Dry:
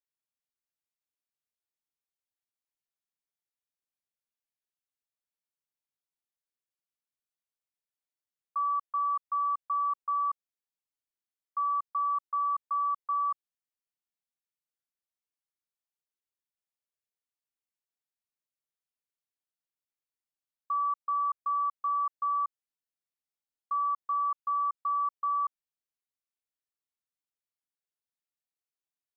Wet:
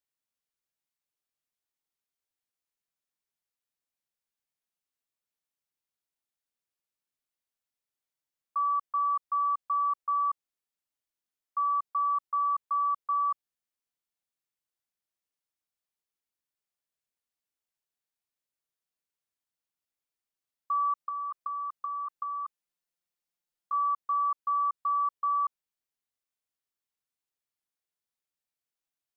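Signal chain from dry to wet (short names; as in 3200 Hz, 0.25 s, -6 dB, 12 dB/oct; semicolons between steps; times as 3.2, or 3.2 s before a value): 20.97–23.73 comb 5.7 ms, depth 63%; gain +1.5 dB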